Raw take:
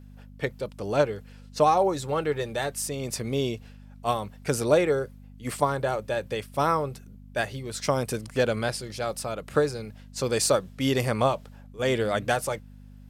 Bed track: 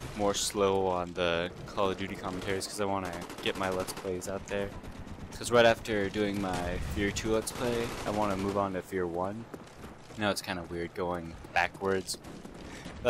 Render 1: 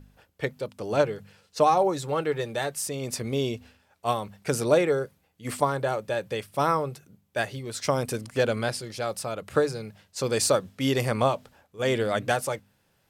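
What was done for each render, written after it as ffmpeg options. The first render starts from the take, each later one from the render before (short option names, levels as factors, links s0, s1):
-af "bandreject=f=50:t=h:w=4,bandreject=f=100:t=h:w=4,bandreject=f=150:t=h:w=4,bandreject=f=200:t=h:w=4,bandreject=f=250:t=h:w=4"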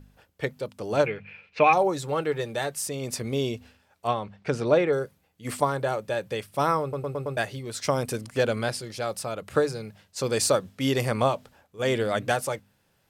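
-filter_complex "[0:a]asettb=1/sr,asplit=3[s0][s1][s2];[s0]atrim=end=1.064[s3];[s1]atrim=start=1.06:end=1.73,asetpts=PTS-STARTPTS,afade=t=in:d=0.004:c=qsin,afade=t=out:st=0.666:d=0.004:c=qsin,lowpass=f=2400:t=q:w=14[s4];[s2]atrim=start=1.726[s5];[s3][s4]acrossfade=d=0.004:c1=hsin:c2=qsin[s6];[s6][s5]acrossfade=d=0.004:c1=qsin:c2=hsin,asettb=1/sr,asplit=3[s7][s8][s9];[s7]atrim=end=4.074[s10];[s8]atrim=start=4.07:end=4.93,asetpts=PTS-STARTPTS,afade=t=in:d=0.004:c=qsin,afade=t=out:st=0.856:d=0.004:c=qsin,lowpass=3700[s11];[s9]atrim=start=4.926[s12];[s10][s11]acrossfade=d=0.004:c1=hsin:c2=qsin[s13];[s13][s12]acrossfade=d=0.004:c1=qsin:c2=hsin,asplit=6[s14][s15][s16][s17][s18][s19];[s14]atrim=end=6.932[s20];[s15]atrim=start=6.818:end=6.932[s21];[s16]atrim=start=6.818:end=6.932[s22];[s17]atrim=start=6.818:end=6.932[s23];[s18]atrim=start=6.818:end=6.932[s24];[s19]atrim=start=7.368[s25];[s20][s21]acrossfade=d=0.004:c1=hsin:c2=hsin[s26];[s26][s22]acrossfade=d=0.004:c1=hsin:c2=hsin[s27];[s27][s23]acrossfade=d=0.004:c1=hsin:c2=hsin[s28];[s28][s24]acrossfade=d=0.004:c1=hsin:c2=hsin[s29];[s29][s25]acrossfade=d=0.004:c1=hsin:c2=hsin"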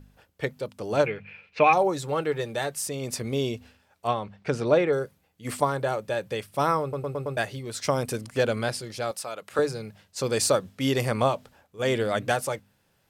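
-filter_complex "[0:a]asettb=1/sr,asplit=3[s0][s1][s2];[s0]atrim=end=9.114[s3];[s1]atrim=start=9.11:end=9.59,asetpts=PTS-STARTPTS,afade=t=in:d=0.004:c=qsin,afade=t=out:st=0.476:d=0.004:c=qsin,highpass=f=670:p=1[s4];[s2]atrim=start=9.586[s5];[s3][s4]acrossfade=d=0.004:c1=hsin:c2=qsin[s6];[s6][s5]acrossfade=d=0.004:c1=qsin:c2=hsin"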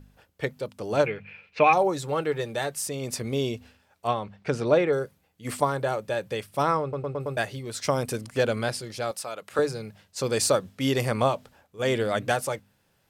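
-filter_complex "[0:a]asplit=3[s0][s1][s2];[s0]afade=t=out:st=6.62:d=0.02[s3];[s1]adynamicsmooth=sensitivity=2.5:basefreq=5700,afade=t=in:st=6.62:d=0.02,afade=t=out:st=7.19:d=0.02[s4];[s2]afade=t=in:st=7.19:d=0.02[s5];[s3][s4][s5]amix=inputs=3:normalize=0"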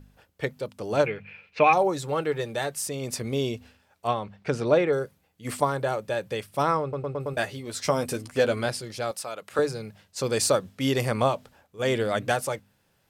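-filter_complex "[0:a]asettb=1/sr,asplit=3[s0][s1][s2];[s0]atrim=end=7.324[s3];[s1]atrim=start=7.32:end=8.66,asetpts=PTS-STARTPTS,afade=t=in:d=0.004:c=qsin,afade=t=out:st=1.336:d=0.004:c=qsin,asplit=2[s4][s5];[s5]adelay=12,volume=0.447[s6];[s4][s6]amix=inputs=2:normalize=0,atrim=end_sample=59094[s7];[s2]atrim=start=8.656[s8];[s3][s7]acrossfade=d=0.004:c1=hsin:c2=qsin[s9];[s9][s8]acrossfade=d=0.004:c1=qsin:c2=hsin"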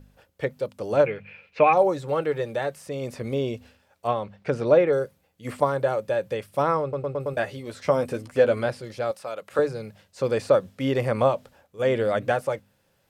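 -filter_complex "[0:a]acrossover=split=2800[s0][s1];[s1]acompressor=threshold=0.00398:ratio=4:attack=1:release=60[s2];[s0][s2]amix=inputs=2:normalize=0,equalizer=f=540:w=4.8:g=6.5"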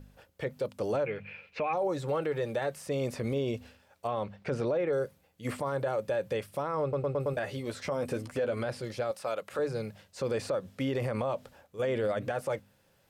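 -af "acompressor=threshold=0.0708:ratio=5,alimiter=limit=0.075:level=0:latency=1:release=23"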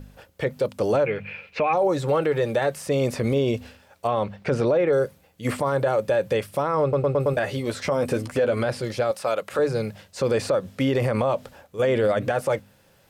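-af "volume=2.82"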